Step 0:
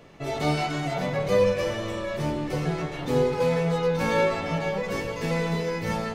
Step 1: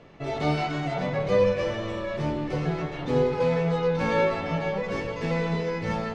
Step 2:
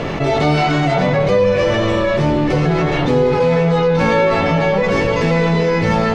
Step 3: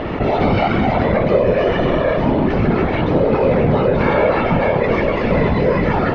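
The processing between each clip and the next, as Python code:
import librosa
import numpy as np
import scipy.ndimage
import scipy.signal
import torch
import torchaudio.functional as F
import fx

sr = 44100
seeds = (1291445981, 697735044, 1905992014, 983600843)

y1 = fx.air_absorb(x, sr, metres=110.0)
y2 = fx.env_flatten(y1, sr, amount_pct=70)
y2 = F.gain(torch.from_numpy(y2), 6.0).numpy()
y3 = fx.whisperise(y2, sr, seeds[0])
y3 = fx.air_absorb(y3, sr, metres=270.0)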